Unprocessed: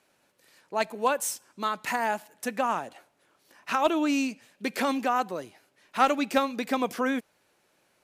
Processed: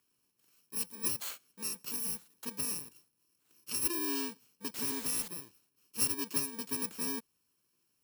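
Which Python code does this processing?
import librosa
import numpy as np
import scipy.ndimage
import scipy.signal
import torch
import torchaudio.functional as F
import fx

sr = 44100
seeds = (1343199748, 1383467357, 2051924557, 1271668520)

y = fx.bit_reversed(x, sr, seeds[0], block=64)
y = fx.quant_dither(y, sr, seeds[1], bits=6, dither='triangular', at=(4.74, 5.28))
y = F.gain(torch.from_numpy(y), -9.0).numpy()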